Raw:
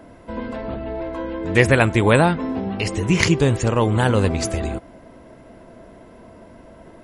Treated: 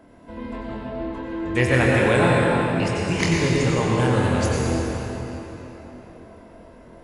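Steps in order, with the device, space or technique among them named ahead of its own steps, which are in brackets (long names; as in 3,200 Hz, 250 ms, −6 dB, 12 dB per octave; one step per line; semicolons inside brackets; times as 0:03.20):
tunnel (flutter between parallel walls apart 4.1 metres, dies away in 0.21 s; convolution reverb RT60 4.0 s, pre-delay 83 ms, DRR −3.5 dB)
level −7.5 dB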